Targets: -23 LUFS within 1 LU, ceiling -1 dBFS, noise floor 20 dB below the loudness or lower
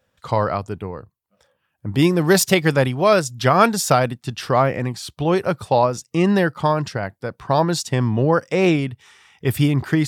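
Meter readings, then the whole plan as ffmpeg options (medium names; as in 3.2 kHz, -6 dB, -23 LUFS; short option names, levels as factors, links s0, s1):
loudness -19.0 LUFS; peak level -1.5 dBFS; loudness target -23.0 LUFS
-> -af "volume=0.631"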